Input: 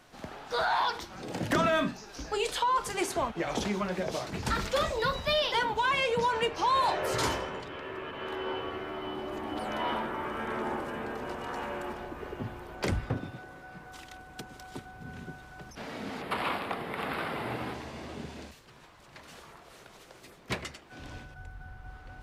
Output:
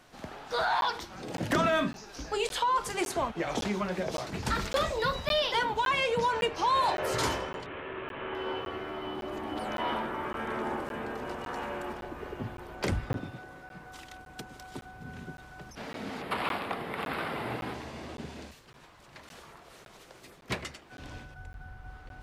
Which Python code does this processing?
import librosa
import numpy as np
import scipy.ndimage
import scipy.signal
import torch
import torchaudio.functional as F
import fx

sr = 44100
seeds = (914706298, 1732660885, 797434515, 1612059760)

y = fx.delta_mod(x, sr, bps=16000, step_db=-38.5, at=(7.66, 8.35))
y = fx.buffer_crackle(y, sr, first_s=0.81, period_s=0.56, block=512, kind='zero')